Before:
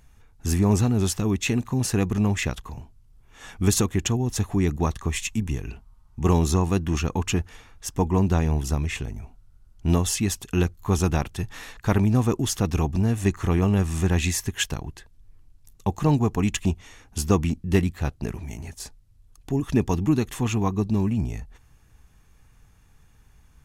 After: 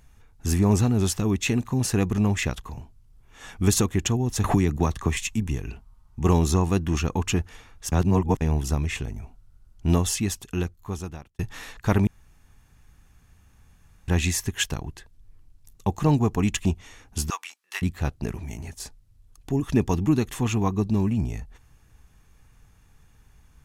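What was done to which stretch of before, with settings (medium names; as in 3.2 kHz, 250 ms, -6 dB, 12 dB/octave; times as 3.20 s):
4.44–5.17 s: three bands compressed up and down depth 100%
7.92–8.41 s: reverse
9.99–11.39 s: fade out
12.07–14.08 s: room tone
17.30–17.82 s: high-pass 1 kHz 24 dB/octave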